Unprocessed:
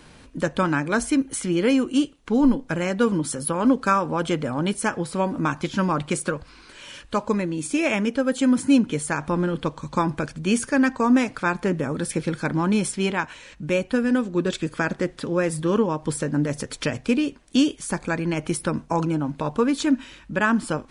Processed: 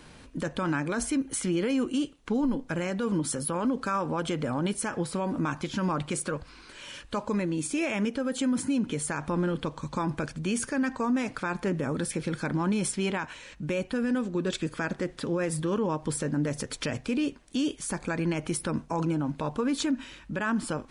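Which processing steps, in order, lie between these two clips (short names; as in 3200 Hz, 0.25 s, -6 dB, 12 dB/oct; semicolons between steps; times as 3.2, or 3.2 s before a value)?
limiter -18 dBFS, peak gain reduction 10.5 dB; gain -2 dB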